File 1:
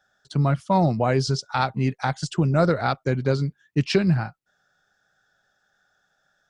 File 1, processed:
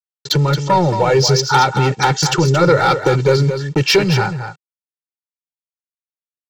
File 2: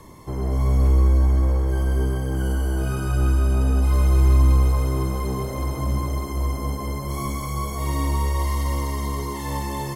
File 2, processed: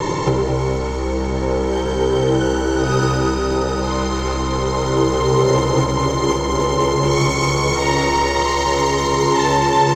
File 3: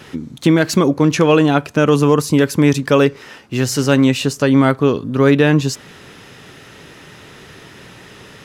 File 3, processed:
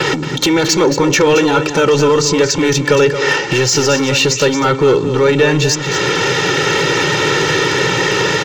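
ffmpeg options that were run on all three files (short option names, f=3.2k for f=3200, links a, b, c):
-af "dynaudnorm=f=510:g=5:m=5dB,apsyclip=19dB,acompressor=threshold=-18dB:ratio=12,agate=range=-23dB:threshold=-41dB:ratio=16:detection=peak,adynamicequalizer=threshold=0.00631:dfrequency=5900:dqfactor=7.4:tfrequency=5900:tqfactor=7.4:attack=5:release=100:ratio=0.375:range=1.5:mode=boostabove:tftype=bell,aresample=16000,acrusher=bits=7:mix=0:aa=0.000001,aresample=44100,volume=16dB,asoftclip=hard,volume=-16dB,lowshelf=f=110:t=q:w=1.5:g=-13,aecho=1:1:2.2:0.89,aecho=1:1:224:0.355,volume=5dB"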